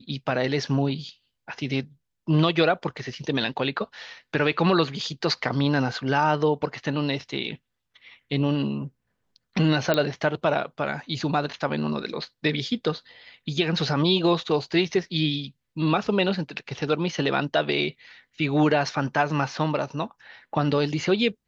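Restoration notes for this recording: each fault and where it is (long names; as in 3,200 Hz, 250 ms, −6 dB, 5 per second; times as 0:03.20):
0:09.94: click −9 dBFS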